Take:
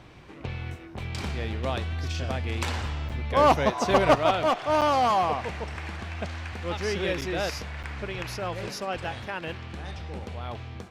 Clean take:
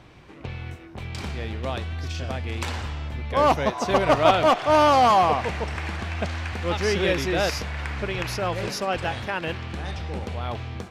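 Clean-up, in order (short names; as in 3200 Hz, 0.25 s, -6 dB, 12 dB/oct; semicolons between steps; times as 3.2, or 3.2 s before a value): clip repair -11 dBFS; interpolate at 3.09/4.81/7.21/7.83, 7.2 ms; gain 0 dB, from 4.15 s +5.5 dB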